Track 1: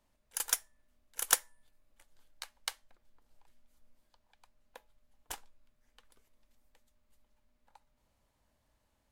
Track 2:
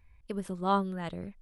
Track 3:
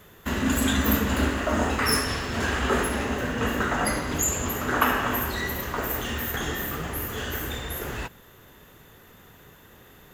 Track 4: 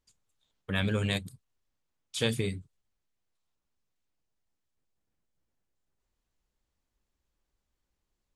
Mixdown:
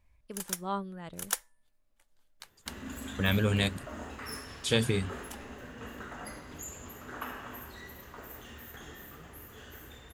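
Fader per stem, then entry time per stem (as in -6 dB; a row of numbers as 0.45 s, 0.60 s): -4.5 dB, -7.0 dB, -18.0 dB, +2.0 dB; 0.00 s, 0.00 s, 2.40 s, 2.50 s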